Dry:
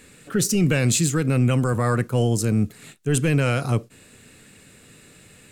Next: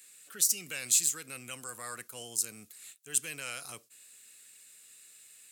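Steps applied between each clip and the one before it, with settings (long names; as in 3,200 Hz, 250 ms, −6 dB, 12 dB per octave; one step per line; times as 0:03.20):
first difference
level −1.5 dB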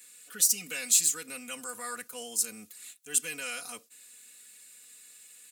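comb filter 4.1 ms, depth 98%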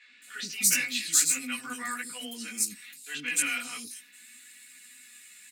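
multi-voice chorus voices 2, 0.42 Hz, delay 16 ms, depth 4.6 ms
octave-band graphic EQ 250/500/2,000/4,000 Hz +11/−7/+11/+5 dB
three-band delay without the direct sound mids, lows, highs 80/220 ms, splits 440/4,100 Hz
level +2.5 dB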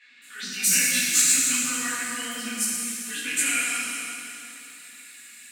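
chorus effect 1.8 Hz, delay 15 ms, depth 3.7 ms
dense smooth reverb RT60 3.1 s, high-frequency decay 0.9×, DRR −3.5 dB
level +3.5 dB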